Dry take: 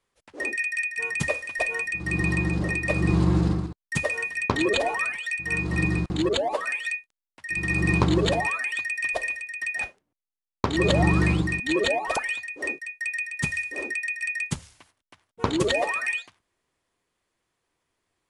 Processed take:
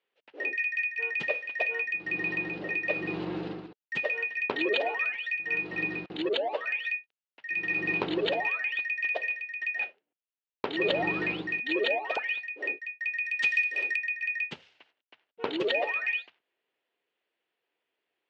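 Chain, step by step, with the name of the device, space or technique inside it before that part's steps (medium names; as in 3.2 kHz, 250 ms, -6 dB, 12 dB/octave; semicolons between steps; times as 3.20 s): phone earpiece (cabinet simulation 370–3800 Hz, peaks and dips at 440 Hz +4 dB, 1.1 kHz -8 dB, 2.8 kHz +6 dB); 13.25–13.96 s: tilt EQ +4.5 dB/octave; trim -4 dB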